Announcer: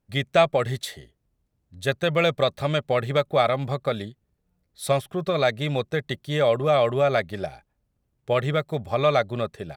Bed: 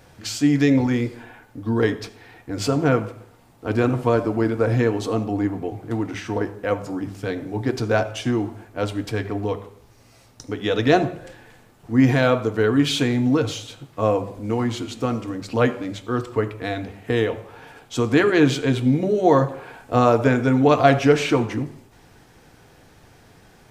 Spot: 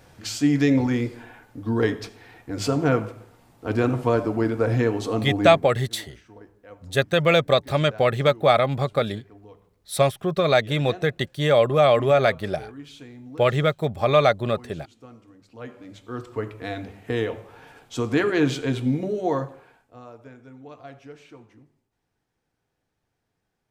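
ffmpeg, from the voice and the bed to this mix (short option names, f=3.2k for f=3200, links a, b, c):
-filter_complex "[0:a]adelay=5100,volume=3dB[a];[1:a]volume=16dB,afade=t=out:st=5.44:d=0.3:silence=0.0944061,afade=t=in:st=15.57:d=1.15:silence=0.125893,afade=t=out:st=18.91:d=1.03:silence=0.0707946[b];[a][b]amix=inputs=2:normalize=0"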